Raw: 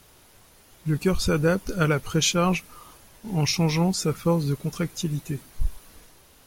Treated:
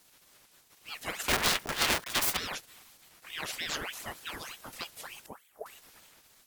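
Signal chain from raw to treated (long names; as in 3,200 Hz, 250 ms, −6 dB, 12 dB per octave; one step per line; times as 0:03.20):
0:01.28–0:02.37: each half-wave held at its own peak
0:05.26–0:05.66: drawn EQ curve 320 Hz 0 dB, 2,900 Hz −22 dB, 13,000 Hz −8 dB
gate on every frequency bin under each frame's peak −15 dB weak
ring modulator whose carrier an LFO sweeps 1,700 Hz, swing 70%, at 3.3 Hz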